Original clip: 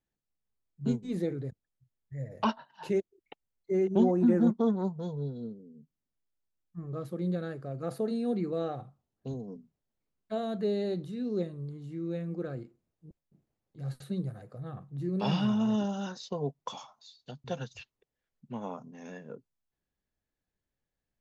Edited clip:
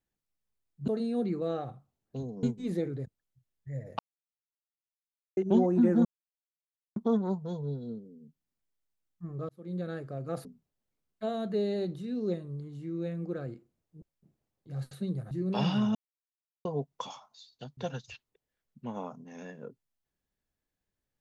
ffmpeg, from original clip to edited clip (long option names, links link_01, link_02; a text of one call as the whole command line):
ffmpeg -i in.wav -filter_complex "[0:a]asplit=11[link_01][link_02][link_03][link_04][link_05][link_06][link_07][link_08][link_09][link_10][link_11];[link_01]atrim=end=0.882[link_12];[link_02]atrim=start=7.988:end=9.542[link_13];[link_03]atrim=start=0.878:end=2.44,asetpts=PTS-STARTPTS,afade=type=out:start_time=1.558:duration=0.004:curve=hsin[link_14];[link_04]atrim=start=2.44:end=3.82,asetpts=PTS-STARTPTS,volume=0[link_15];[link_05]atrim=start=3.82:end=4.5,asetpts=PTS-STARTPTS,afade=type=in:duration=0.004:curve=hsin,afade=type=out:start_time=0.676:duration=0.004:curve=hsin,apad=pad_dur=0.91[link_16];[link_06]atrim=start=4.5:end=7.03,asetpts=PTS-STARTPTS,afade=type=in:duration=0.004:curve=hsin,afade=type=out:start_time=2.526:duration=0.004:curve=hsin[link_17];[link_07]atrim=start=7.03:end=7.992,asetpts=PTS-STARTPTS,afade=type=in:duration=0.45[link_18];[link_08]atrim=start=9.538:end=14.402[link_19];[link_09]atrim=start=14.978:end=15.62,asetpts=PTS-STARTPTS,afade=type=out:start_time=0.638:duration=0.004:curve=hsin[link_20];[link_10]atrim=start=15.62:end=16.32,asetpts=PTS-STARTPTS,volume=0[link_21];[link_11]atrim=start=16.32,asetpts=PTS-STARTPTS,afade=type=in:duration=0.004:curve=hsin[link_22];[link_12][link_13]acrossfade=duration=0.004:curve1=hsin:curve2=hsin[link_23];[link_14][link_15][link_16][link_17][link_18]concat=n=5:v=0:a=1[link_24];[link_23][link_24]acrossfade=duration=0.004:curve1=hsin:curve2=hsin[link_25];[link_25][link_19]acrossfade=duration=0.004:curve1=hsin:curve2=hsin[link_26];[link_20][link_21][link_22]concat=n=3:v=0:a=1[link_27];[link_26][link_27]acrossfade=duration=0.004:curve1=hsin:curve2=hsin" out.wav